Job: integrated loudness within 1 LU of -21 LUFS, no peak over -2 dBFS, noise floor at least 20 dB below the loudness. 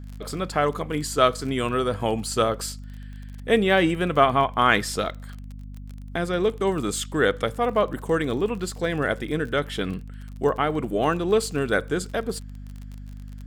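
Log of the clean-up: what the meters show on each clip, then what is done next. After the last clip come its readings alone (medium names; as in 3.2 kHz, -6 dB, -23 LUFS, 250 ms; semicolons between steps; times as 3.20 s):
tick rate 29 per s; hum 50 Hz; highest harmonic 250 Hz; hum level -35 dBFS; loudness -24.0 LUFS; peak level -3.0 dBFS; loudness target -21.0 LUFS
-> de-click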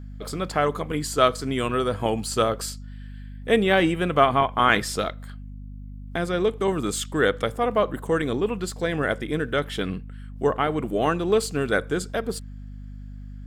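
tick rate 0.30 per s; hum 50 Hz; highest harmonic 250 Hz; hum level -35 dBFS
-> de-hum 50 Hz, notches 5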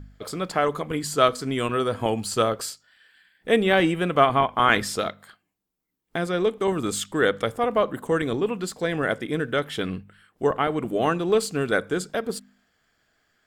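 hum not found; loudness -24.0 LUFS; peak level -3.5 dBFS; loudness target -21.0 LUFS
-> trim +3 dB; peak limiter -2 dBFS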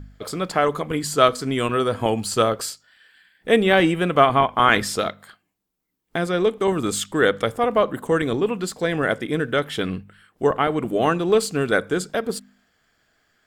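loudness -21.0 LUFS; peak level -2.0 dBFS; noise floor -72 dBFS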